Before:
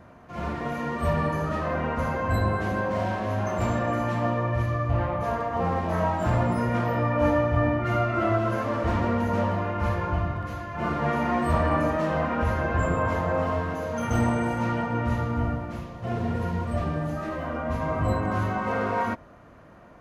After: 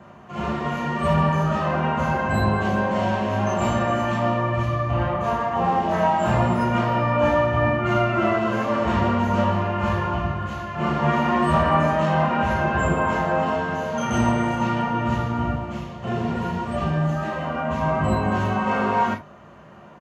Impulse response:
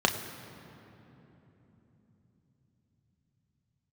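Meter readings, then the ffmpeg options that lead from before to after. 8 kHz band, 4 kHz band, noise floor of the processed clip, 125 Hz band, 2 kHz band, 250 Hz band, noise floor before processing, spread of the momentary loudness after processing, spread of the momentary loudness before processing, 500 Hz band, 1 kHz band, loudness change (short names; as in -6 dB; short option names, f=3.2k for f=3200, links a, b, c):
+5.5 dB, +8.5 dB, -45 dBFS, +2.5 dB, +5.0 dB, +4.5 dB, -49 dBFS, 7 LU, 6 LU, +3.5 dB, +6.0 dB, +4.0 dB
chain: -filter_complex "[0:a]highshelf=f=3.1k:g=7.5,asplit=2[a][b];[b]adelay=14,volume=-11dB[c];[a][c]amix=inputs=2:normalize=0[d];[1:a]atrim=start_sample=2205,atrim=end_sample=3528[e];[d][e]afir=irnorm=-1:irlink=0,volume=-9dB"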